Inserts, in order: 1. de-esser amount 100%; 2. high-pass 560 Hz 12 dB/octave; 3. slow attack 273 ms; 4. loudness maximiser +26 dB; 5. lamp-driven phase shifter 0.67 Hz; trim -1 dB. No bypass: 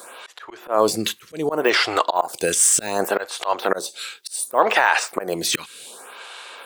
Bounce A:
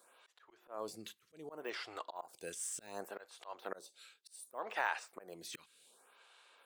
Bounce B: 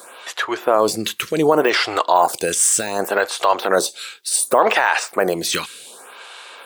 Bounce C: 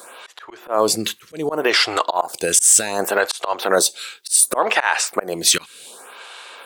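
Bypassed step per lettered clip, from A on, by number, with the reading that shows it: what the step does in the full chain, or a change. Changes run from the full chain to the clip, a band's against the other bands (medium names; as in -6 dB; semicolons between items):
4, crest factor change +5.0 dB; 3, crest factor change -3.0 dB; 1, crest factor change -2.5 dB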